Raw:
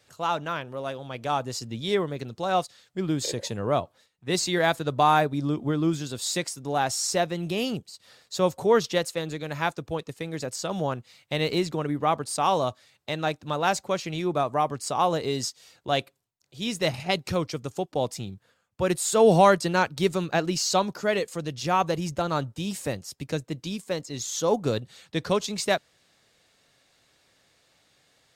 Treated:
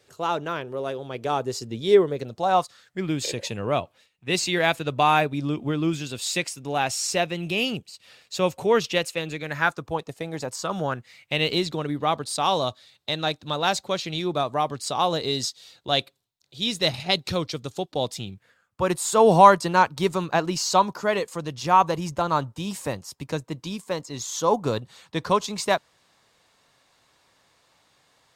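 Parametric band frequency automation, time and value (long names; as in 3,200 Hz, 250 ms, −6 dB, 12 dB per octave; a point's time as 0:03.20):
parametric band +10 dB 0.56 octaves
0:02.07 400 Hz
0:03.16 2,600 Hz
0:09.32 2,600 Hz
0:10.16 630 Hz
0:11.65 3,800 Hz
0:18.11 3,800 Hz
0:18.87 1,000 Hz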